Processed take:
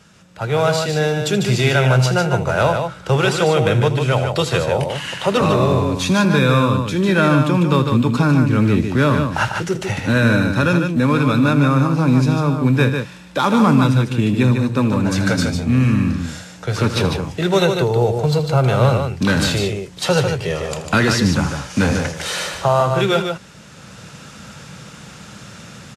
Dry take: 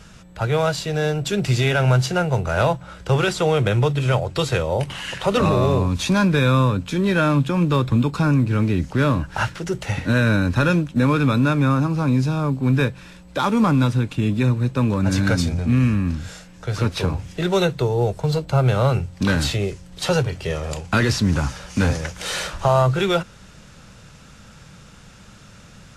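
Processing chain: HPF 110 Hz; AGC; on a send: tapped delay 80/149 ms -14/-6 dB; on the sum: gain -3.5 dB

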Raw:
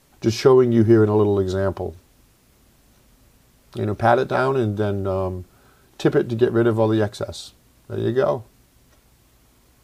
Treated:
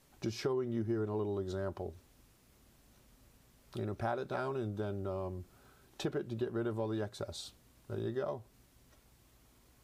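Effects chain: compressor 2.5:1, threshold -29 dBFS, peak gain reduction 13 dB; gain -8.5 dB

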